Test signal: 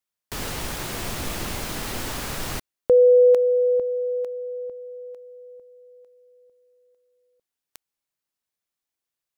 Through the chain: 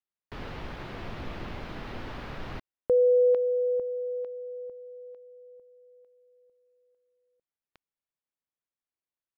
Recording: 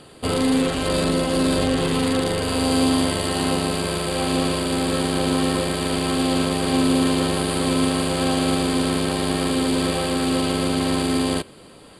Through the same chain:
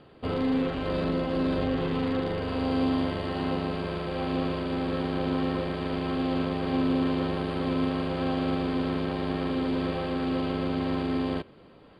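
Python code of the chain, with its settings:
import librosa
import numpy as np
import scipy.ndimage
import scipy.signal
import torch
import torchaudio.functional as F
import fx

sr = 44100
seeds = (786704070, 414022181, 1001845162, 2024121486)

y = fx.air_absorb(x, sr, metres=320.0)
y = y * 10.0 ** (-6.0 / 20.0)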